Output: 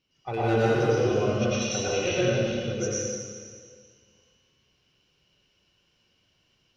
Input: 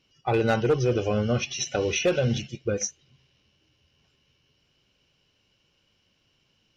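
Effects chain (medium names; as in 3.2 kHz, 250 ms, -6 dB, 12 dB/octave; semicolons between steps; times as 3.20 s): 1.81–2.80 s: Bessel low-pass 4.2 kHz, order 8; plate-style reverb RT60 1.9 s, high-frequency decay 1×, pre-delay 85 ms, DRR -8.5 dB; trim -8.5 dB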